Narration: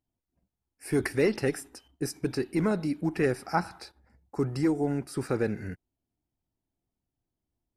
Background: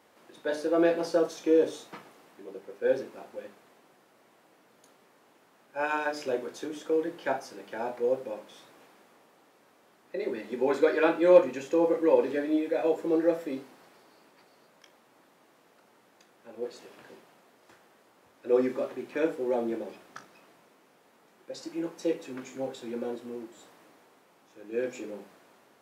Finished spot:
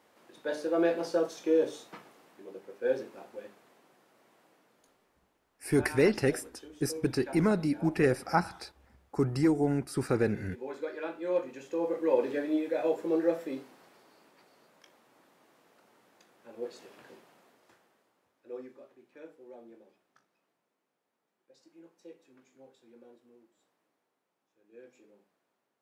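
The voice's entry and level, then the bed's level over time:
4.80 s, +0.5 dB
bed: 4.45 s -3 dB
5.40 s -13.5 dB
11.17 s -13.5 dB
12.27 s -2.5 dB
17.46 s -2.5 dB
18.80 s -21.5 dB

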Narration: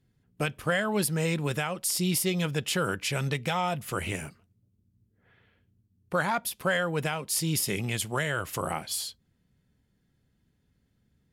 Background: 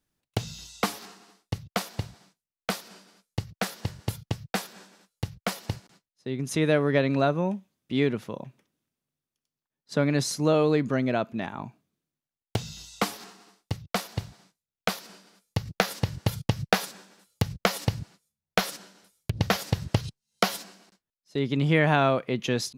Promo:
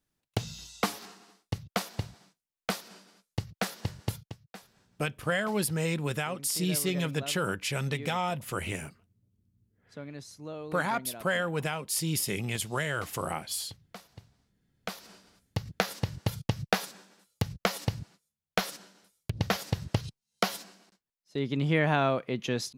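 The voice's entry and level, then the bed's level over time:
4.60 s, -2.0 dB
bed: 4.16 s -2 dB
4.39 s -18.5 dB
14.54 s -18.5 dB
15.09 s -4 dB

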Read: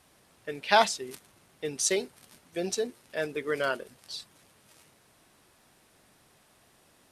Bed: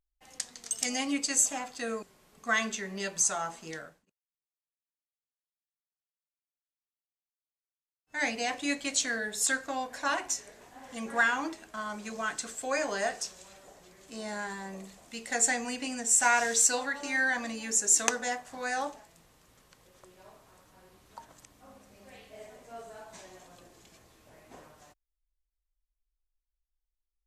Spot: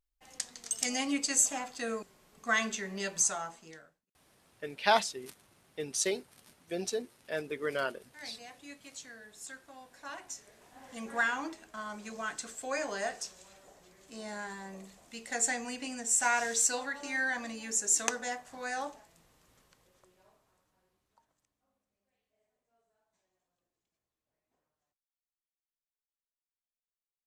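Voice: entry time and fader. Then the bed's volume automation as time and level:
4.15 s, -4.0 dB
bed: 3.22 s -1 dB
4.16 s -18 dB
9.81 s -18 dB
10.82 s -4 dB
19.58 s -4 dB
22.11 s -32.5 dB

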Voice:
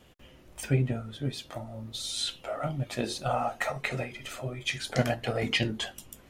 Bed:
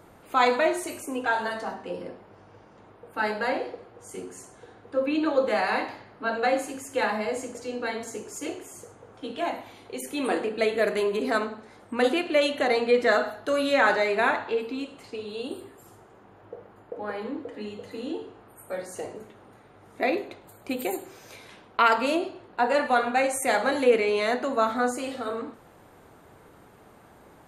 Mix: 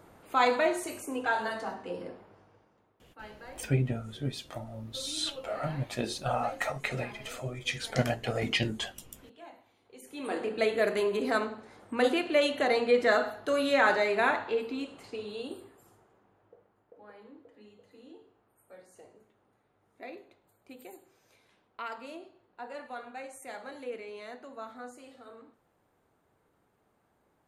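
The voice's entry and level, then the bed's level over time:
3.00 s, -1.5 dB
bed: 2.21 s -3.5 dB
2.98 s -20.5 dB
9.80 s -20.5 dB
10.51 s -3 dB
15.25 s -3 dB
16.75 s -19 dB

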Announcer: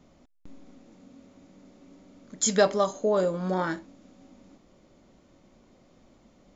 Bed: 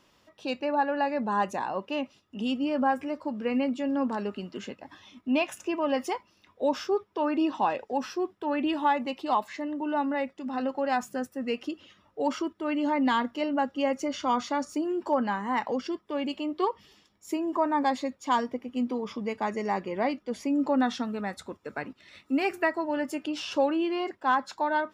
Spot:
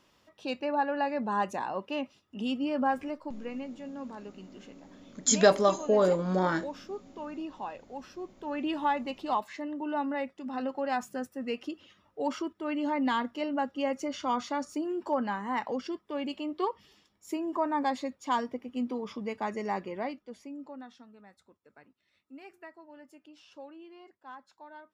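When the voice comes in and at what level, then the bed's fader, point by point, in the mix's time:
2.85 s, +0.5 dB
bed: 3.03 s -2.5 dB
3.65 s -12.5 dB
8.10 s -12.5 dB
8.71 s -3.5 dB
19.83 s -3.5 dB
20.88 s -22 dB

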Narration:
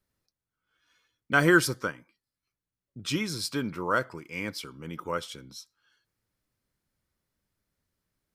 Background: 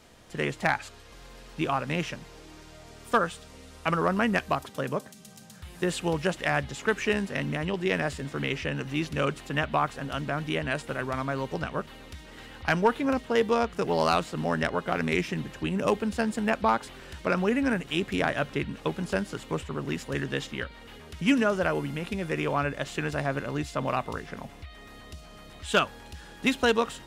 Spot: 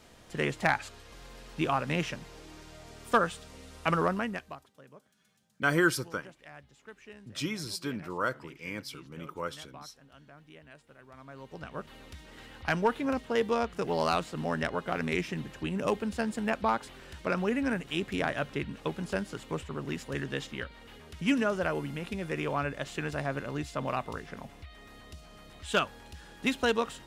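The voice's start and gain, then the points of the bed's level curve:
4.30 s, -4.5 dB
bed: 4.02 s -1 dB
4.75 s -23.5 dB
11.01 s -23.5 dB
11.96 s -4 dB

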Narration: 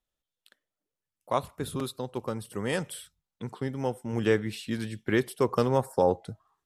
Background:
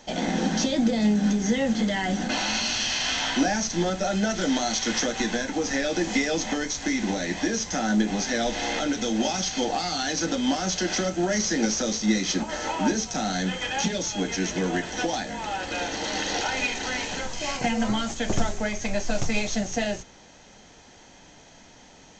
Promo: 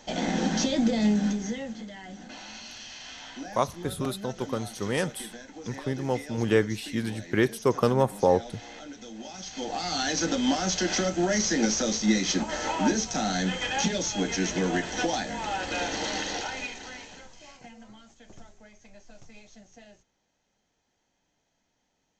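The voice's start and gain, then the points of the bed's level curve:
2.25 s, +2.0 dB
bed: 1.17 s -1.5 dB
1.87 s -16.5 dB
9.24 s -16.5 dB
9.97 s -0.5 dB
16.02 s -0.5 dB
17.86 s -25 dB

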